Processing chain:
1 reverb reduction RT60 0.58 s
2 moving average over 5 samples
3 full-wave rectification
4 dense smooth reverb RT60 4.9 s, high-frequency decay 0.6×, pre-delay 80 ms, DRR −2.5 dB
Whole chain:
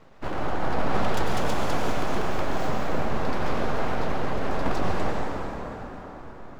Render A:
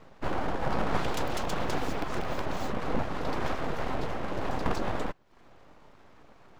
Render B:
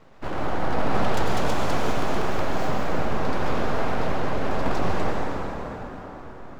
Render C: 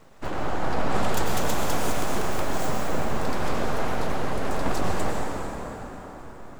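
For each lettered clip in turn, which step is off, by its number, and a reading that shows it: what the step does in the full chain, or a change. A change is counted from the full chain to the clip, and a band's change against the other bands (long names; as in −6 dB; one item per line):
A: 4, change in integrated loudness −4.0 LU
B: 1, change in integrated loudness +1.5 LU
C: 2, 4 kHz band +2.0 dB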